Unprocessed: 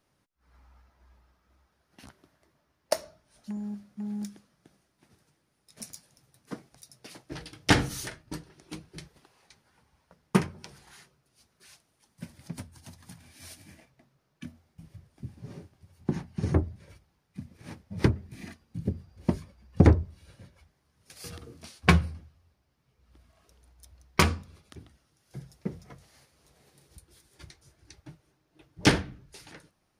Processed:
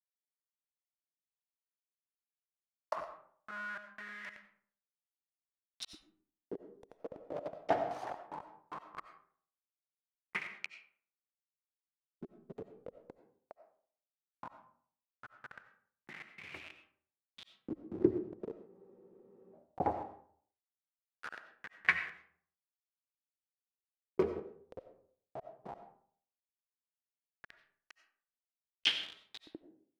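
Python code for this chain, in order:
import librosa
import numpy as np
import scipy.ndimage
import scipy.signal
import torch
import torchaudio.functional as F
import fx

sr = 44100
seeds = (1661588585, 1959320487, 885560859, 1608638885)

p1 = fx.delta_hold(x, sr, step_db=-33.5)
p2 = fx.over_compress(p1, sr, threshold_db=-39.0, ratio=-0.5)
p3 = p1 + (p2 * librosa.db_to_amplitude(1.5))
p4 = fx.filter_lfo_bandpass(p3, sr, shape='saw_up', hz=0.17, low_hz=300.0, high_hz=3900.0, q=6.0)
p5 = fx.rev_freeverb(p4, sr, rt60_s=0.56, hf_ratio=0.55, predelay_ms=50, drr_db=8.5)
p6 = fx.spec_freeze(p5, sr, seeds[0], at_s=18.7, hold_s=0.83)
y = p6 * librosa.db_to_amplitude(4.0)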